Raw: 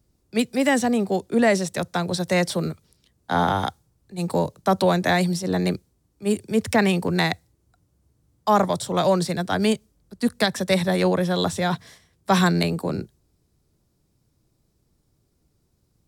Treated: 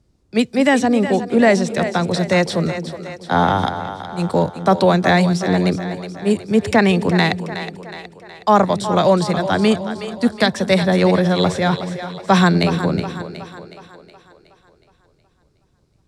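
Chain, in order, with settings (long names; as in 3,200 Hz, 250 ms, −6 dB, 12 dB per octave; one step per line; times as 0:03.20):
high-frequency loss of the air 62 metres
on a send: echo with a time of its own for lows and highs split 350 Hz, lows 218 ms, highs 368 ms, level −10.5 dB
on the sum: level +5.5 dB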